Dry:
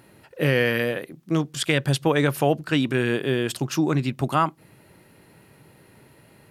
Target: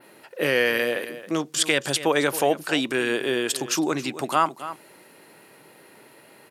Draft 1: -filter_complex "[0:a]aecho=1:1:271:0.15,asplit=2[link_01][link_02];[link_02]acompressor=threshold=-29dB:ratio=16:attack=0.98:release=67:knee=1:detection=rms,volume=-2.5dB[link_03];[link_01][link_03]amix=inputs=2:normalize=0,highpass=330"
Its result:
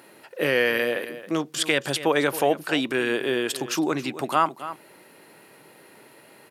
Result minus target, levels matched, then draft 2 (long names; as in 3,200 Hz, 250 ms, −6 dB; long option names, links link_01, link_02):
8,000 Hz band −4.5 dB
-filter_complex "[0:a]aecho=1:1:271:0.15,asplit=2[link_01][link_02];[link_02]acompressor=threshold=-29dB:ratio=16:attack=0.98:release=67:knee=1:detection=rms,volume=-2.5dB[link_03];[link_01][link_03]amix=inputs=2:normalize=0,highpass=330,adynamicequalizer=threshold=0.00501:dfrequency=7200:dqfactor=0.88:tfrequency=7200:tqfactor=0.88:attack=5:release=100:ratio=0.438:range=3:mode=boostabove:tftype=bell"